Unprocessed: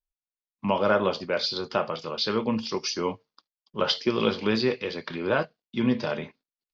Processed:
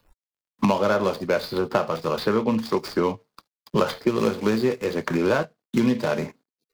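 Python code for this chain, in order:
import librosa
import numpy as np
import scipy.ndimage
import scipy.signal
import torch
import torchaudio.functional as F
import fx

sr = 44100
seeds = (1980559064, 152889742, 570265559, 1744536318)

y = scipy.ndimage.median_filter(x, 15, mode='constant')
y = fx.noise_reduce_blind(y, sr, reduce_db=18)
y = fx.band_squash(y, sr, depth_pct=100)
y = F.gain(torch.from_numpy(y), 3.5).numpy()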